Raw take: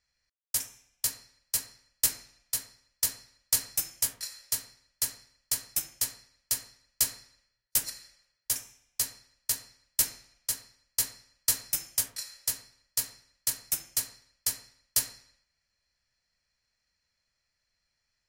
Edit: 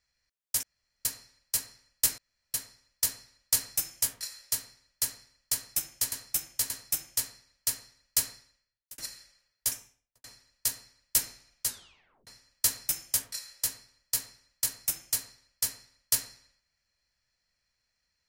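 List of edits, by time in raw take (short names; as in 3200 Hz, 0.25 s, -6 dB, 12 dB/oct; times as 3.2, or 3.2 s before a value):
0.63–1.05 room tone
2.18–2.54 room tone
5.54–6.12 loop, 3 plays
7.15–7.82 fade out
8.56–9.08 studio fade out
10.51 tape stop 0.60 s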